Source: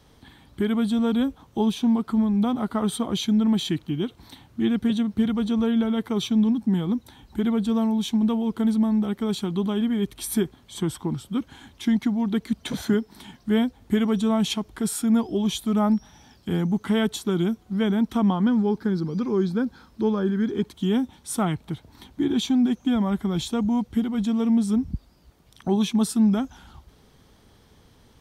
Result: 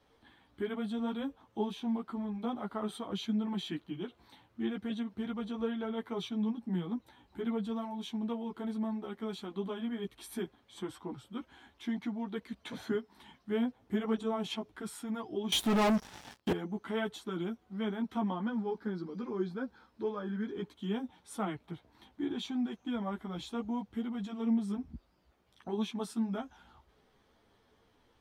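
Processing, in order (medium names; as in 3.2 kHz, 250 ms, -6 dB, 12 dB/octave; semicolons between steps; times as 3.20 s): chorus voices 6, 0.59 Hz, delay 13 ms, depth 4.1 ms; tone controls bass -10 dB, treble -10 dB; 15.52–16.53 s: waveshaping leveller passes 5; trim -5.5 dB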